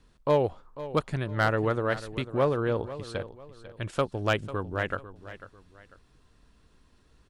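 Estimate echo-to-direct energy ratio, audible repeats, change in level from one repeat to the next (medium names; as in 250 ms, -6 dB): -14.0 dB, 2, -9.5 dB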